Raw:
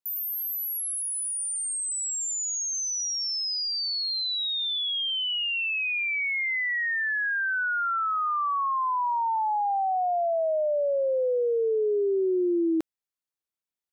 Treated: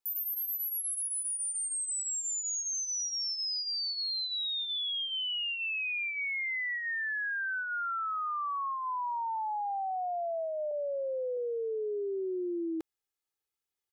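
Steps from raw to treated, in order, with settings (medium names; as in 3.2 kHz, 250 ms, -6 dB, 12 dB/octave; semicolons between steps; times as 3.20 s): 10.71–11.37 s: low-pass 1.7 kHz 12 dB/octave; comb 2.4 ms, depth 68%; peak limiter -30.5 dBFS, peak gain reduction 13.5 dB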